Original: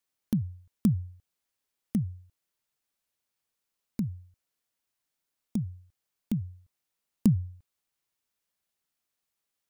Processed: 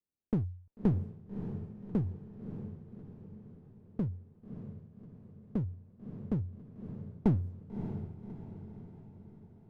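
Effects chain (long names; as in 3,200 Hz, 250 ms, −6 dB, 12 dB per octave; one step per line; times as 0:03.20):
low-pass that shuts in the quiet parts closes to 350 Hz, open at −24 dBFS
asymmetric clip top −32 dBFS, bottom −15.5 dBFS
feedback delay with all-pass diffusion 599 ms, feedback 52%, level −8.5 dB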